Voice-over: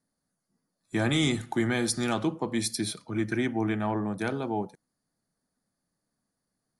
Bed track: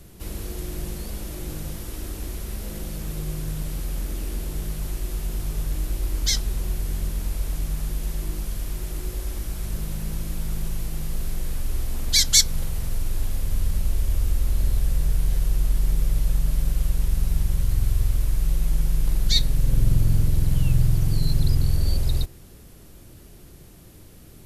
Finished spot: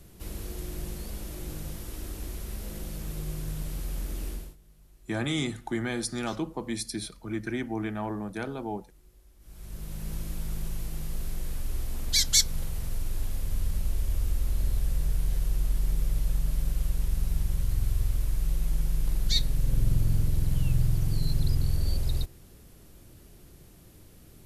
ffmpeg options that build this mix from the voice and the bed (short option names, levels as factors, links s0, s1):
-filter_complex "[0:a]adelay=4150,volume=0.631[s0];[1:a]volume=7.5,afade=t=out:st=4.28:d=0.28:silence=0.0707946,afade=t=in:st=9.39:d=0.74:silence=0.0749894[s1];[s0][s1]amix=inputs=2:normalize=0"